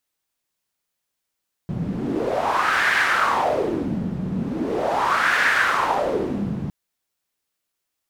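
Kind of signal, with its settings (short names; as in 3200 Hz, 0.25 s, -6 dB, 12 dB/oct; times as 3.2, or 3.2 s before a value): wind-like swept noise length 5.01 s, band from 170 Hz, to 1700 Hz, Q 3.9, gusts 2, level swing 7 dB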